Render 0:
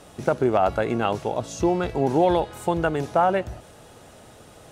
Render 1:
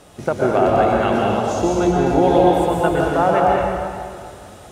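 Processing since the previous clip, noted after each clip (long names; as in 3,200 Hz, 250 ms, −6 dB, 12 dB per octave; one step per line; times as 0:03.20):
dense smooth reverb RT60 2.2 s, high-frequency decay 0.8×, pre-delay 105 ms, DRR −3.5 dB
level +1 dB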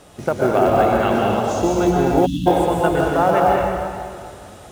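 time-frequency box erased 0:02.26–0:02.47, 320–2,600 Hz
floating-point word with a short mantissa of 4 bits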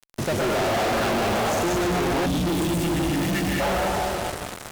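gain on a spectral selection 0:02.39–0:03.60, 360–1,700 Hz −25 dB
fuzz pedal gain 40 dB, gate −36 dBFS
level −8.5 dB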